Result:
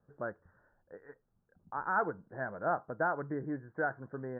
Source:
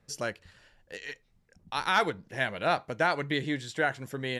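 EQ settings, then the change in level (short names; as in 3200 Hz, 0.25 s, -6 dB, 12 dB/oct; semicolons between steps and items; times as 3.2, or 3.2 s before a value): steep low-pass 1600 Hz 72 dB/oct; low shelf 79 Hz -8 dB; -4.5 dB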